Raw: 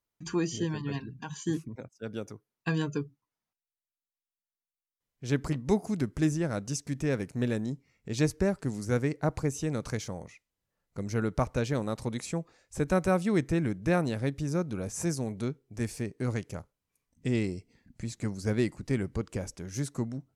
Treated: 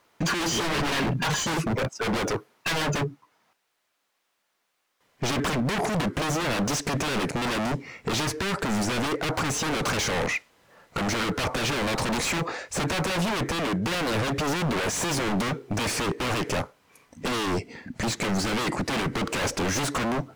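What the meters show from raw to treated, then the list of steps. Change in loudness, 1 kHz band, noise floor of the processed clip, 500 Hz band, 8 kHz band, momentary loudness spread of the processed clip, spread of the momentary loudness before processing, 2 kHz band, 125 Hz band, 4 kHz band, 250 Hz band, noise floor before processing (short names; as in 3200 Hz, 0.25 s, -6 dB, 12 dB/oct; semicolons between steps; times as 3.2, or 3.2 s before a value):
+5.0 dB, +11.5 dB, -75 dBFS, +3.0 dB, +10.5 dB, 5 LU, 12 LU, +12.0 dB, +1.0 dB, +16.5 dB, +2.0 dB, under -85 dBFS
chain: vocal rider within 4 dB 0.5 s; overdrive pedal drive 34 dB, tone 1500 Hz, clips at -13.5 dBFS; wavefolder -24.5 dBFS; gain +4 dB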